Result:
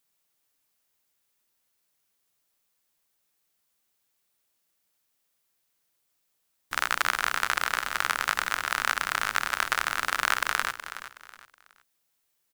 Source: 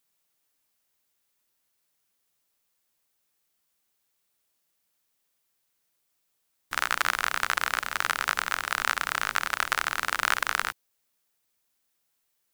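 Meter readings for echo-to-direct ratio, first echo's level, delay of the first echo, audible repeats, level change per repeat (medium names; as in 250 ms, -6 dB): -11.5 dB, -12.0 dB, 371 ms, 3, -10.0 dB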